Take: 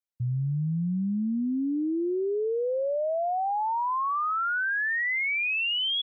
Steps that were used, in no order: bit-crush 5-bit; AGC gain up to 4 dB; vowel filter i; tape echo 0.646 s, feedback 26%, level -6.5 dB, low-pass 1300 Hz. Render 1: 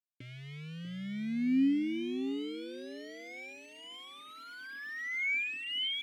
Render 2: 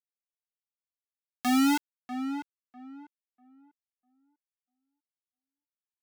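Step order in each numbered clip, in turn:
AGC > bit-crush > vowel filter > tape echo; vowel filter > bit-crush > tape echo > AGC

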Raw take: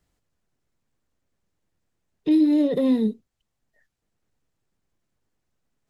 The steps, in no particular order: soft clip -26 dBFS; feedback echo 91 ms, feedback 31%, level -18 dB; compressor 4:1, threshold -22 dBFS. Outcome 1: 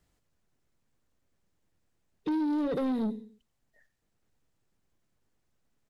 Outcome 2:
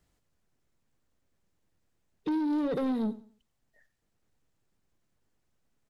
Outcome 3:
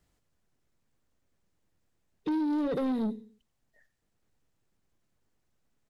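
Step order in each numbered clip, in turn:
feedback echo > compressor > soft clip; compressor > soft clip > feedback echo; compressor > feedback echo > soft clip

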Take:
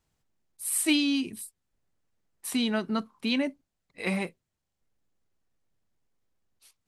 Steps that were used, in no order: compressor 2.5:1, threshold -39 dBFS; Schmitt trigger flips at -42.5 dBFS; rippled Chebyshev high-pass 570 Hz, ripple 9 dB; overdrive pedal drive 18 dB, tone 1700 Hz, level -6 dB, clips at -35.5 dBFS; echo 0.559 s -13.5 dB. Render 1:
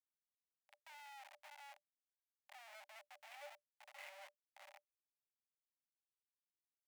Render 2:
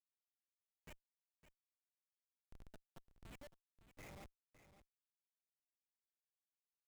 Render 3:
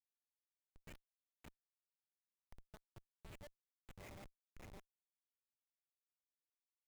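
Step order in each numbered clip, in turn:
compressor > echo > overdrive pedal > Schmitt trigger > rippled Chebyshev high-pass; compressor > overdrive pedal > rippled Chebyshev high-pass > Schmitt trigger > echo; echo > overdrive pedal > compressor > rippled Chebyshev high-pass > Schmitt trigger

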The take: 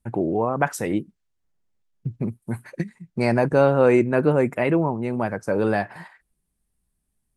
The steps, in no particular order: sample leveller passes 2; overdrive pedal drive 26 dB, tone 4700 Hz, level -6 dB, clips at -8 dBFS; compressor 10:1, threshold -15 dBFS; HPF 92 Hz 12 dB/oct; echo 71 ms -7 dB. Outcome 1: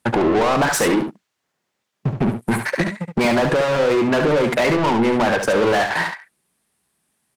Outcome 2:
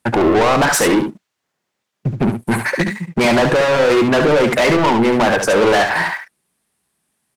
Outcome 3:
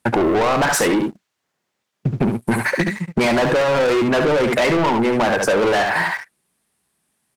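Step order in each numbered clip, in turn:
sample leveller > HPF > overdrive pedal > compressor > echo; HPF > overdrive pedal > compressor > sample leveller > echo; HPF > overdrive pedal > echo > sample leveller > compressor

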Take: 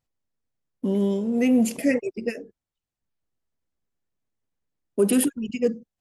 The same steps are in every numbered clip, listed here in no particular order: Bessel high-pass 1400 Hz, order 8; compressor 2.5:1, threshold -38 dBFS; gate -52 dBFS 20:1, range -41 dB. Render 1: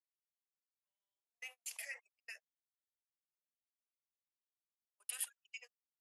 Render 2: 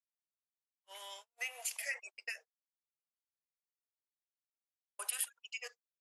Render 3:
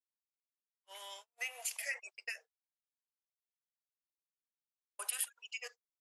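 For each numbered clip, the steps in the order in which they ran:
compressor > Bessel high-pass > gate; Bessel high-pass > compressor > gate; Bessel high-pass > gate > compressor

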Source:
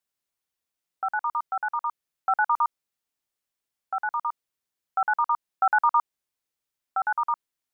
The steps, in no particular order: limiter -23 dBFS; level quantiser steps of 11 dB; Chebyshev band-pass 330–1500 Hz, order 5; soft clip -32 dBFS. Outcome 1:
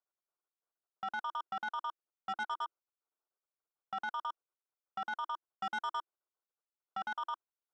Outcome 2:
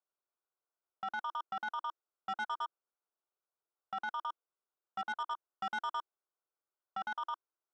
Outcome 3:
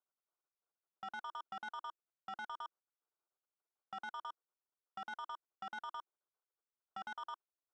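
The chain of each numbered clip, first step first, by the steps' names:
Chebyshev band-pass > level quantiser > limiter > soft clip; level quantiser > limiter > Chebyshev band-pass > soft clip; limiter > Chebyshev band-pass > soft clip > level quantiser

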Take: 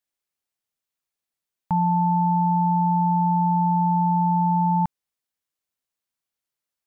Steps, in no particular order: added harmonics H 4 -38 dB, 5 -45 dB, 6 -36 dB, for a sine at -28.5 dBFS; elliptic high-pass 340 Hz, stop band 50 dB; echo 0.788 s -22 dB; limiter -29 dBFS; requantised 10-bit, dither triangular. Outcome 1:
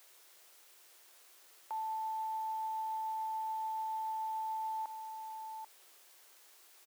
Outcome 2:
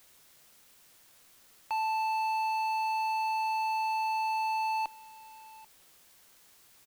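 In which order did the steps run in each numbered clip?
echo > limiter > added harmonics > requantised > elliptic high-pass; elliptic high-pass > added harmonics > echo > limiter > requantised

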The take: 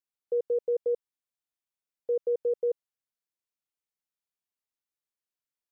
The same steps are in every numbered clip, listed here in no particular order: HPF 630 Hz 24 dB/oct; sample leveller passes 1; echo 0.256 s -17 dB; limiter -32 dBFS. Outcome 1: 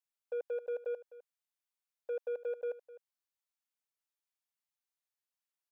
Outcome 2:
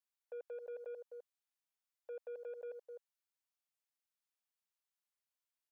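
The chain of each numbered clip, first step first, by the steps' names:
HPF > limiter > sample leveller > echo; echo > limiter > HPF > sample leveller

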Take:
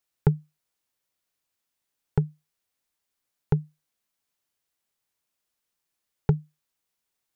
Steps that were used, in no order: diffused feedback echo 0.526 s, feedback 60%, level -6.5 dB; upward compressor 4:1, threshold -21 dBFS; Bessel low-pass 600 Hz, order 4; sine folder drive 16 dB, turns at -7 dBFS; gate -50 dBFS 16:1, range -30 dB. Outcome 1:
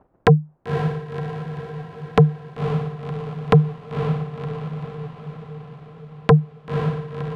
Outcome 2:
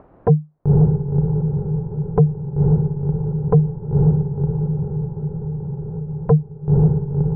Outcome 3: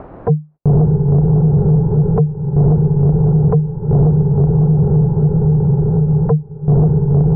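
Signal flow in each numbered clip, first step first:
upward compressor > Bessel low-pass > gate > sine folder > diffused feedback echo; diffused feedback echo > sine folder > upward compressor > gate > Bessel low-pass; diffused feedback echo > upward compressor > gate > sine folder > Bessel low-pass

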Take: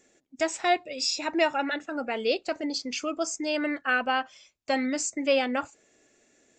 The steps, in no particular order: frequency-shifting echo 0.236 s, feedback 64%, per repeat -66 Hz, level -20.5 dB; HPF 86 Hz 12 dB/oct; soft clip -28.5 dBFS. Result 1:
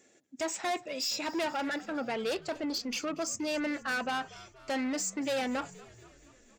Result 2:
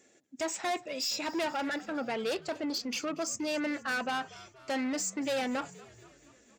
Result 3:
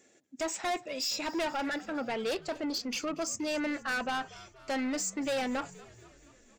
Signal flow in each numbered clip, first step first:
soft clip > HPF > frequency-shifting echo; soft clip > frequency-shifting echo > HPF; HPF > soft clip > frequency-shifting echo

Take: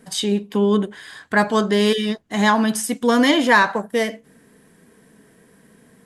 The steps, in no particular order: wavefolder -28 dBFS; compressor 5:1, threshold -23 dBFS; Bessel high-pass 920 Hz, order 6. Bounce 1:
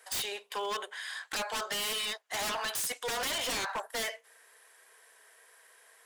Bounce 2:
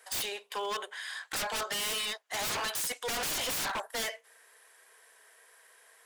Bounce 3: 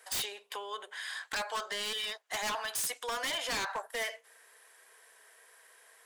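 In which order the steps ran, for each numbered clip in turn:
Bessel high-pass > compressor > wavefolder; Bessel high-pass > wavefolder > compressor; compressor > Bessel high-pass > wavefolder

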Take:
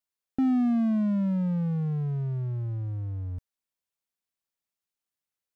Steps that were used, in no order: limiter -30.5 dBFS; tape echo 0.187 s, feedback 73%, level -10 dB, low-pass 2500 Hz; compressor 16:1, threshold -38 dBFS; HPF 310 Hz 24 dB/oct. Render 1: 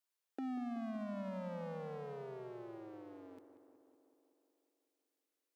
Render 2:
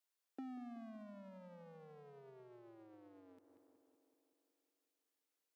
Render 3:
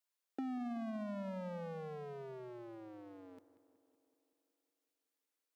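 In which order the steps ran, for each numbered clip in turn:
HPF > tape echo > compressor > limiter; limiter > tape echo > compressor > HPF; tape echo > HPF > limiter > compressor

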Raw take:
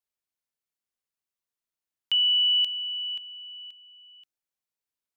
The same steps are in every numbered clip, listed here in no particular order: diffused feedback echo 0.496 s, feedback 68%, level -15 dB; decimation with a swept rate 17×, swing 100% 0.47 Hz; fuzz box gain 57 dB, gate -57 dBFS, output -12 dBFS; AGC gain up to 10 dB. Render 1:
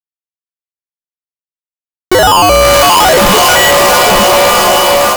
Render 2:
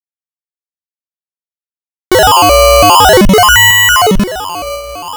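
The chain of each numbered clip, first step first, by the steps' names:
decimation with a swept rate > diffused feedback echo > fuzz box > AGC; fuzz box > AGC > diffused feedback echo > decimation with a swept rate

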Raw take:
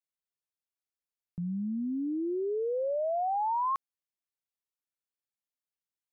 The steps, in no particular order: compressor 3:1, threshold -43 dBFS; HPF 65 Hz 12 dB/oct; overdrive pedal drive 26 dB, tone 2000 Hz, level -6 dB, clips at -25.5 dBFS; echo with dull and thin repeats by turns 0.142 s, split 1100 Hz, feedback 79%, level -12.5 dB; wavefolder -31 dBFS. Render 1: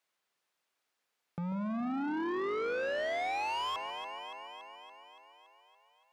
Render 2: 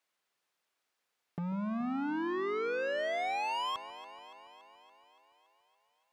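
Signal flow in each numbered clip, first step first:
wavefolder > compressor > echo with dull and thin repeats by turns > overdrive pedal > HPF; HPF > wavefolder > compressor > overdrive pedal > echo with dull and thin repeats by turns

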